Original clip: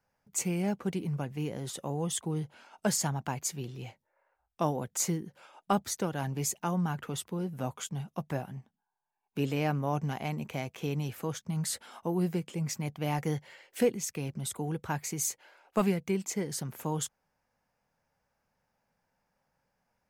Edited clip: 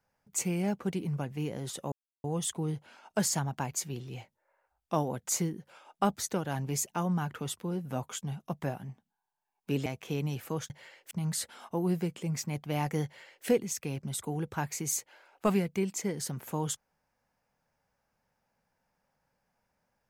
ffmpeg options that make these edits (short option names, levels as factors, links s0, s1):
-filter_complex "[0:a]asplit=5[s0][s1][s2][s3][s4];[s0]atrim=end=1.92,asetpts=PTS-STARTPTS,afade=t=out:st=1.916:d=0.004:c=hsin,apad=pad_dur=0.32[s5];[s1]atrim=start=1.92:end=9.542,asetpts=PTS-STARTPTS,afade=t=in:d=0.004:c=hsin[s6];[s2]atrim=start=10.588:end=11.432[s7];[s3]atrim=start=13.368:end=13.782[s8];[s4]atrim=start=11.428[s9];[s5][s6]concat=n=2:v=0:a=1[s10];[s10][s7]acrossfade=d=0.004:c1=hsin:c2=hsin[s11];[s11][s8]acrossfade=d=0.004:c1=hsin:c2=hsin[s12];[s12][s9]acrossfade=d=0.004:c1=hsin:c2=hsin"